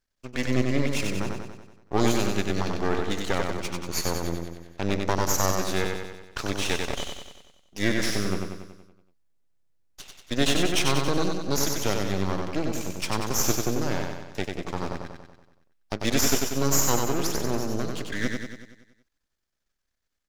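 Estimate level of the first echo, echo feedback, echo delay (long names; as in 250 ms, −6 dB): −4.0 dB, 56%, 94 ms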